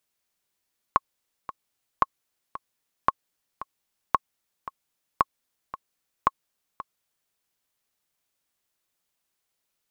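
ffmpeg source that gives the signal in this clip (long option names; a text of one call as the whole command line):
ffmpeg -f lavfi -i "aevalsrc='pow(10,(-5-15.5*gte(mod(t,2*60/113),60/113))/20)*sin(2*PI*1090*mod(t,60/113))*exp(-6.91*mod(t,60/113)/0.03)':duration=6.37:sample_rate=44100" out.wav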